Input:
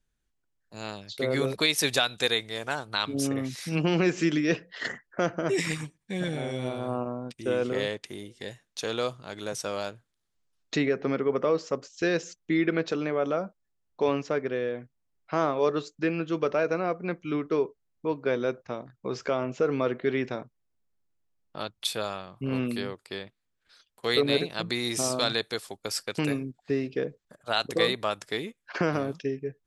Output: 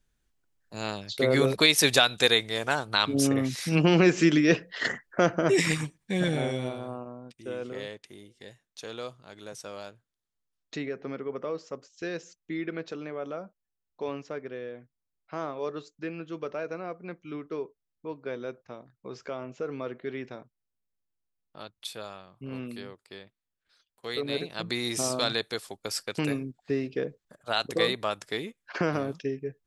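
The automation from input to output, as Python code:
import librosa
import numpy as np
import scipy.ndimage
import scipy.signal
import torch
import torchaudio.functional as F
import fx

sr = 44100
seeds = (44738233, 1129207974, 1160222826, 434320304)

y = fx.gain(x, sr, db=fx.line((6.44, 4.0), (7.0, -8.5), (24.16, -8.5), (24.73, -1.0)))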